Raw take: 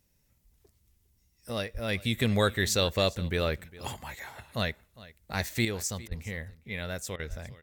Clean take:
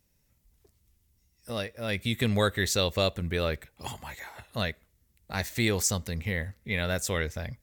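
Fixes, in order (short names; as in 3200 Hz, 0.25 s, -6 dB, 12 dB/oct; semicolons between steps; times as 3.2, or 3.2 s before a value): 1.73–1.85 HPF 140 Hz 24 dB/oct; 6.08–6.2 HPF 140 Hz 24 dB/oct; 7.29–7.41 HPF 140 Hz 24 dB/oct; interpolate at 6.08/7.16, 32 ms; inverse comb 0.406 s -19.5 dB; 5.65 gain correction +6.5 dB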